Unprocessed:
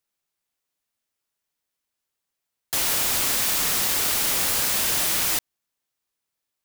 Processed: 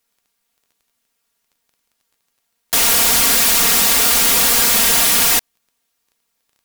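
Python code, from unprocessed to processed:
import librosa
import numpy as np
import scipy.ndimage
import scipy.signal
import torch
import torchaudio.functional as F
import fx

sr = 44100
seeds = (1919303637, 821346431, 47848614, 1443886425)

y = x + 0.86 * np.pad(x, (int(4.3 * sr / 1000.0), 0))[:len(x)]
y = fx.fold_sine(y, sr, drive_db=7, ceiling_db=-7.0)
y = fx.dmg_crackle(y, sr, seeds[0], per_s=11.0, level_db=-42.0)
y = y * librosa.db_to_amplitude(-1.5)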